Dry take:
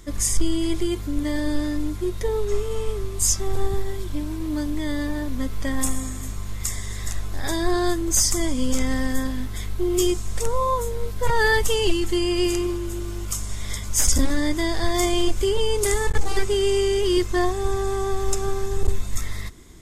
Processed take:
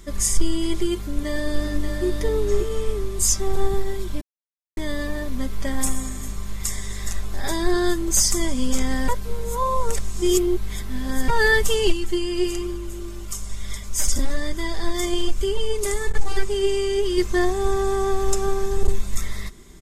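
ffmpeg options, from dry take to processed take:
-filter_complex "[0:a]asplit=2[a][b];[b]afade=t=in:st=0.95:d=0.01,afade=t=out:st=2.05:d=0.01,aecho=0:1:580|1160|1740:0.530884|0.132721|0.0331803[c];[a][c]amix=inputs=2:normalize=0,asplit=3[d][e][f];[d]afade=t=out:st=11.91:d=0.02[g];[e]flanger=delay=0.6:depth=2.8:regen=70:speed=1.1:shape=sinusoidal,afade=t=in:st=11.91:d=0.02,afade=t=out:st=17.17:d=0.02[h];[f]afade=t=in:st=17.17:d=0.02[i];[g][h][i]amix=inputs=3:normalize=0,asplit=5[j][k][l][m][n];[j]atrim=end=4.21,asetpts=PTS-STARTPTS,afade=t=out:st=4.206:d=0.004:c=hsin[o];[k]atrim=start=4.21:end=4.77,asetpts=PTS-STARTPTS,volume=0[p];[l]atrim=start=4.77:end=9.082,asetpts=PTS-STARTPTS,afade=t=in:d=0.004:c=hsin[q];[m]atrim=start=9.078:end=11.282,asetpts=PTS-STARTPTS,areverse[r];[n]atrim=start=11.278[s];[o][p][q]concat=n=3:v=0:a=1[t];[t][r]acrossfade=d=0.004:c1=hsin:c2=hsin[u];[u][s]acrossfade=d=0.004:c1=hsin:c2=hsin,aecho=1:1:5.1:0.43"

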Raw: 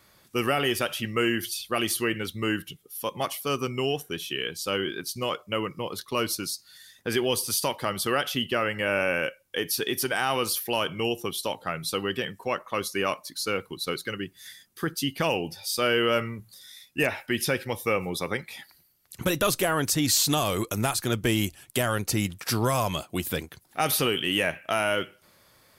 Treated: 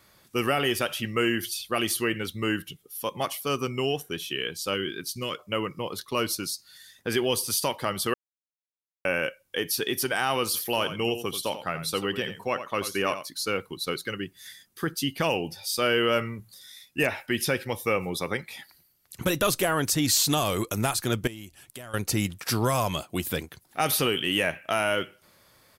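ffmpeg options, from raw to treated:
-filter_complex "[0:a]asettb=1/sr,asplit=3[a][b][c];[a]atrim=end=4.744[d];[b]atrim=start=4.74:end=5.39,asetpts=PTS-STARTPTS,afade=t=in:d=0.004:c=qsin,afade=t=out:st=0.646:d=0.004:c=qsin,equalizer=f=770:w=1.6:g=-11.5[e];[c]atrim=start=5.386[f];[d][e]acrossfade=d=0.004:c1=hsin:c2=qsin[g];[g][f]acrossfade=d=0.004:c1=qsin:c2=hsin,asplit=3[h][i][j];[h]afade=t=out:st=10.53:d=0.02[k];[i]aecho=1:1:87:0.282,afade=t=in:st=10.53:d=0.02,afade=t=out:st=13.27:d=0.02[l];[j]afade=t=in:st=13.27:d=0.02[m];[k][l][m]amix=inputs=3:normalize=0,asettb=1/sr,asplit=3[n][o][p];[n]atrim=end=21.274[q];[o]atrim=start=21.27:end=21.94,asetpts=PTS-STARTPTS,afade=t=in:d=0.004:c=qsin,afade=t=out:st=0.666:d=0.004:c=qsin,acompressor=threshold=-46dB:ratio=2.5:attack=3.2:release=140:knee=1:detection=peak[r];[p]atrim=start=21.936[s];[q][r]acrossfade=d=0.004:c1=hsin:c2=qsin[t];[t][s]acrossfade=d=0.004:c1=qsin:c2=hsin,asplit=3[u][v][w];[u]atrim=end=8.14,asetpts=PTS-STARTPTS,afade=t=out:st=8.136:d=0.004:c=hsin[x];[v]atrim=start=8.14:end=9.05,asetpts=PTS-STARTPTS,volume=0[y];[w]atrim=start=9.05,asetpts=PTS-STARTPTS,afade=t=in:d=0.004:c=hsin[z];[x][y][z]concat=n=3:v=0:a=1"

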